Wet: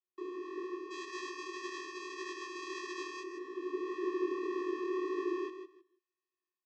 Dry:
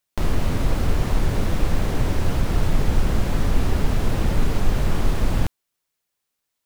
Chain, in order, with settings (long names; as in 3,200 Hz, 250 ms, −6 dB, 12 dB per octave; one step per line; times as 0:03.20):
0:00.90–0:03.19: spectral envelope flattened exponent 0.1
high-pass filter 140 Hz 6 dB per octave
automatic gain control gain up to 8.5 dB
tube saturation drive 16 dB, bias 0.5
channel vocoder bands 16, square 365 Hz
high-frequency loss of the air 100 metres
repeating echo 160 ms, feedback 18%, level −9.5 dB
micro pitch shift up and down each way 60 cents
level −7 dB